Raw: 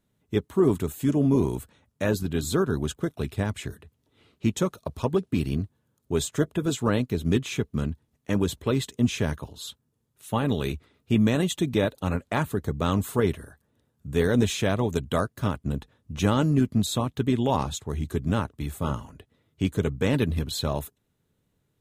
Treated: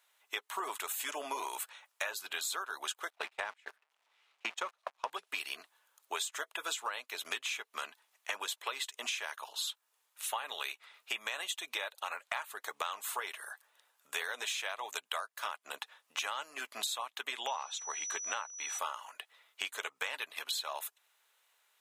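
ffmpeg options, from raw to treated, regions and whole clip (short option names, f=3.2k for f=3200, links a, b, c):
-filter_complex "[0:a]asettb=1/sr,asplit=3[a][b][c];[a]atrim=end=3.104[d];[b]atrim=start=3.1:end=5.1,asetpts=PTS-STARTPTS,afade=t=in:d=0.004:c=qsin,afade=t=out:st=1.996:d=0.004:c=qsin,aeval=exprs='val(0)+0.5*0.0141*sgn(val(0))':c=same,agate=range=-34dB:threshold=-30dB:ratio=16:release=100:detection=peak,aemphasis=mode=reproduction:type=bsi[e];[c]atrim=start=5.096[f];[d][e]acrossfade=d=0.004:c1=hsin:c2=qsin[g];[g][f]acrossfade=d=0.004:c1=qsin:c2=hsin,asettb=1/sr,asplit=3[h][i][j];[h]atrim=end=17.474[k];[i]atrim=start=17.47:end=18.79,asetpts=PTS-STARTPTS,afade=t=in:d=0.004:c=qsin,afade=t=out:st=1.316:d=0.004:c=qsin,lowpass=8.5k,highshelf=f=5.4k:g=-8.5,aeval=exprs='val(0)+0.00631*sin(2*PI*5900*n/s)':c=same[l];[j]atrim=start=18.786[m];[k][l]acrossfade=d=0.004:c1=hsin:c2=qsin[n];[n][m]acrossfade=d=0.004:c1=qsin:c2=hsin,highpass=f=810:w=0.5412,highpass=f=810:w=1.3066,equalizer=f=2.5k:t=o:w=0.8:g=3.5,acompressor=threshold=-43dB:ratio=12,volume=9dB"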